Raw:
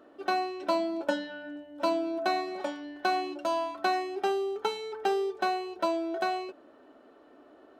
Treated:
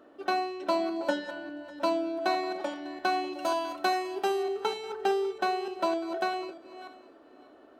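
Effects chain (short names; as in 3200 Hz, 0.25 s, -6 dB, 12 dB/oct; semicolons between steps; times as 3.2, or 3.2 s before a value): regenerating reverse delay 0.299 s, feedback 40%, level -12 dB; 3.33–4.43 high shelf 8000 Hz +10.5 dB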